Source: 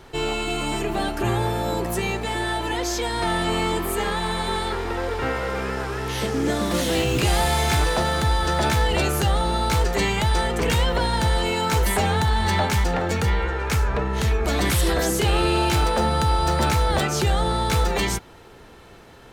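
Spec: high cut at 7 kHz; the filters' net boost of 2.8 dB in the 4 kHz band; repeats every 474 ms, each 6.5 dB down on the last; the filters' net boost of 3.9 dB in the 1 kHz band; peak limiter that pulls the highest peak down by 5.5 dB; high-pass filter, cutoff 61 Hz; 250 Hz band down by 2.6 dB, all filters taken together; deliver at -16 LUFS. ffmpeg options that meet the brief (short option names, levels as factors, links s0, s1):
-af "highpass=61,lowpass=7000,equalizer=f=250:t=o:g=-4.5,equalizer=f=1000:t=o:g=5,equalizer=f=4000:t=o:g=3.5,alimiter=limit=0.211:level=0:latency=1,aecho=1:1:474|948|1422|1896|2370|2844:0.473|0.222|0.105|0.0491|0.0231|0.0109,volume=2"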